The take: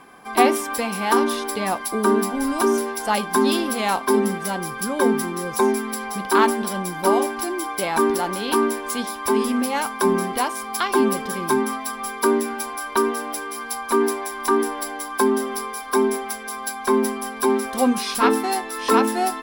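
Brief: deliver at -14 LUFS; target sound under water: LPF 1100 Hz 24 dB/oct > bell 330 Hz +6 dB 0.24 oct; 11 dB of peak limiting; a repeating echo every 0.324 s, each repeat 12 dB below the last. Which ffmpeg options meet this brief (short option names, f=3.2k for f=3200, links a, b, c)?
-af "alimiter=limit=-14dB:level=0:latency=1,lowpass=f=1.1k:w=0.5412,lowpass=f=1.1k:w=1.3066,equalizer=f=330:t=o:w=0.24:g=6,aecho=1:1:324|648|972:0.251|0.0628|0.0157,volume=11.5dB"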